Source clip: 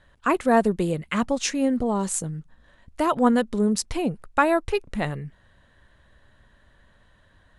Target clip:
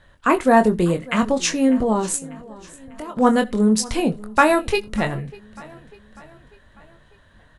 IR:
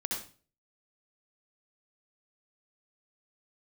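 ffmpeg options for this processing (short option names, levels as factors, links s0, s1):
-filter_complex "[0:a]asettb=1/sr,asplit=3[s0][s1][s2];[s0]atrim=end=2.164[s3];[s1]atrim=start=2.16:end=3.17,asetpts=PTS-STARTPTS,afade=t=in:d=0.004:c=qsin,afade=t=out:st=1.006:d=0.004:c=qsin,acompressor=threshold=0.00562:ratio=2.5[s4];[s2]atrim=start=3.166[s5];[s3][s4]acrossfade=d=0.004:c1=hsin:c2=qsin[s6];[s6][s5]acrossfade=d=0.004:c1=qsin:c2=hsin,asplit=2[s7][s8];[s8]adelay=23,volume=0.447[s9];[s7][s9]amix=inputs=2:normalize=0,aecho=1:1:596|1192|1788|2384:0.0891|0.0472|0.025|0.0133,asplit=2[s10][s11];[1:a]atrim=start_sample=2205,afade=t=out:st=0.14:d=0.01,atrim=end_sample=6615[s12];[s11][s12]afir=irnorm=-1:irlink=0,volume=0.0708[s13];[s10][s13]amix=inputs=2:normalize=0,asplit=3[s14][s15][s16];[s14]afade=t=out:st=3.89:d=0.02[s17];[s15]adynamicequalizer=threshold=0.0224:dfrequency=2500:dqfactor=0.7:tfrequency=2500:tqfactor=0.7:attack=5:release=100:ratio=0.375:range=3:mode=boostabove:tftype=highshelf,afade=t=in:st=3.89:d=0.02,afade=t=out:st=4.95:d=0.02[s18];[s16]afade=t=in:st=4.95:d=0.02[s19];[s17][s18][s19]amix=inputs=3:normalize=0,volume=1.5"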